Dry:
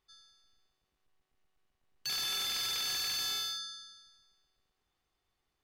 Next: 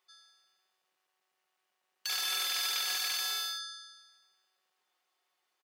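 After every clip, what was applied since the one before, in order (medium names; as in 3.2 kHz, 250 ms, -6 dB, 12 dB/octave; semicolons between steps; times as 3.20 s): high-pass 560 Hz 12 dB/octave; comb 5.5 ms, depth 47%; trim +3.5 dB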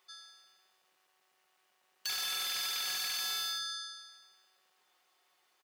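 compression 5:1, threshold -41 dBFS, peak gain reduction 10 dB; hard clipper -39.5 dBFS, distortion -16 dB; trim +7.5 dB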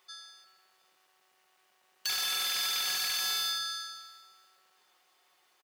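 feedback delay 352 ms, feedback 29%, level -17.5 dB; trim +4 dB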